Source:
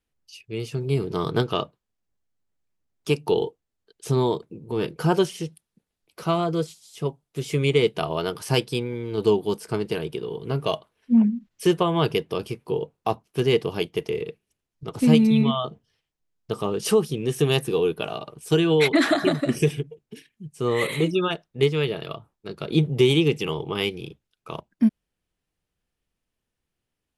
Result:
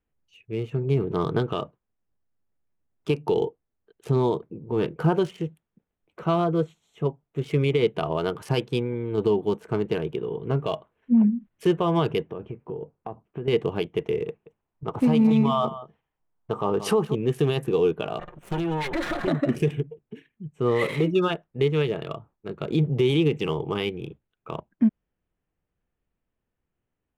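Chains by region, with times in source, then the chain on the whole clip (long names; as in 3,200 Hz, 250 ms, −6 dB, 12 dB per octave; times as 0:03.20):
0:12.31–0:13.48: downward compressor 4 to 1, threshold −30 dBFS + head-to-tape spacing loss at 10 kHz 31 dB + one half of a high-frequency compander encoder only
0:14.28–0:17.15: parametric band 920 Hz +9 dB 1 octave + single-tap delay 178 ms −16 dB
0:18.19–0:19.28: lower of the sound and its delayed copy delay 5.6 ms + high-shelf EQ 5,500 Hz +5 dB + downward compressor, threshold −24 dBFS
whole clip: adaptive Wiener filter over 9 samples; brickwall limiter −13.5 dBFS; high-shelf EQ 3,500 Hz −8.5 dB; level +1.5 dB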